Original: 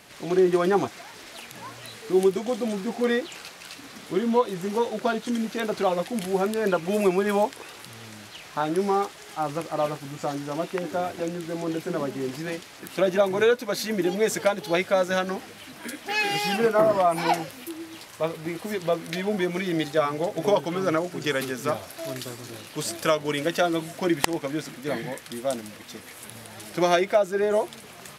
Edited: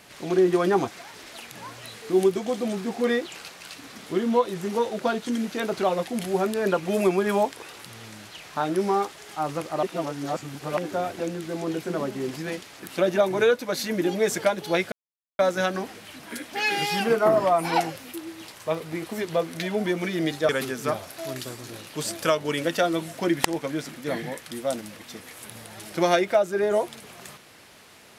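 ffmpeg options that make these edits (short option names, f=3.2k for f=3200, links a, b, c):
-filter_complex "[0:a]asplit=5[a][b][c][d][e];[a]atrim=end=9.832[f];[b]atrim=start=9.828:end=10.772,asetpts=PTS-STARTPTS,areverse[g];[c]atrim=start=10.768:end=14.92,asetpts=PTS-STARTPTS,afade=t=out:st=4.148:d=0.004:c=hsin,apad=pad_dur=0.47[h];[d]atrim=start=14.92:end=20.022,asetpts=PTS-STARTPTS,afade=t=in:d=0.004:c=hsin[i];[e]atrim=start=21.288[j];[f][g]acrossfade=d=0.004:c1=hsin:c2=hsin[k];[h][i]concat=n=2:v=0:a=1[l];[k][l]acrossfade=d=0.004:c1=hsin:c2=hsin[m];[m][j]acrossfade=d=0.004:c1=hsin:c2=hsin"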